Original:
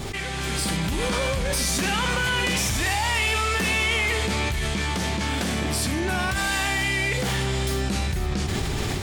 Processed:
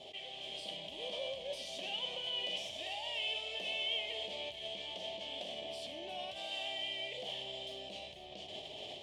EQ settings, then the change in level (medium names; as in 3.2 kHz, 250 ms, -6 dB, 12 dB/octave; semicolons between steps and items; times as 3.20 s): two resonant band-passes 1.4 kHz, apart 2.3 oct; -5.0 dB